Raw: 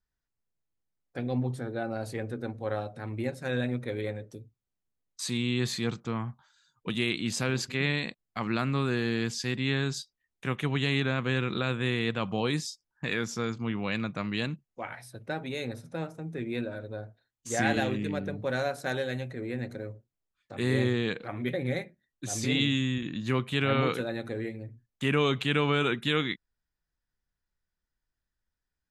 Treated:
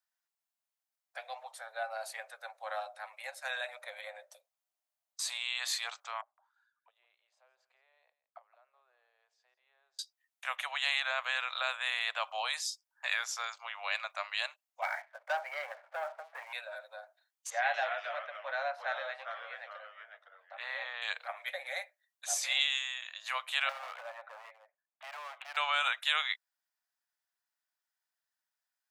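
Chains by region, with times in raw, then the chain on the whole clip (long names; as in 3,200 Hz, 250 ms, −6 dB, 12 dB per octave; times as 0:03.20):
0:03.76–0:05.41: low shelf with overshoot 400 Hz −11.5 dB, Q 3 + downward compressor 2 to 1, threshold −34 dBFS
0:06.21–0:09.99: downward compressor 3 to 1, threshold −35 dBFS + envelope filter 380–2,000 Hz, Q 7.2, down, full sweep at −36.5 dBFS + single-tap delay 165 ms −16.5 dB
0:14.82–0:16.53: Chebyshev low-pass with heavy ripple 2,300 Hz, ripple 3 dB + leveller curve on the samples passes 2
0:17.50–0:21.02: high-frequency loss of the air 290 metres + delay with pitch and tempo change per echo 240 ms, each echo −2 semitones, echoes 2, each echo −6 dB
0:23.69–0:25.57: downward compressor 2.5 to 1, threshold −29 dBFS + Gaussian smoothing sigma 3.9 samples + hard clipping −33.5 dBFS
whole clip: Butterworth high-pass 610 Hz 72 dB per octave; high-shelf EQ 7,900 Hz +4.5 dB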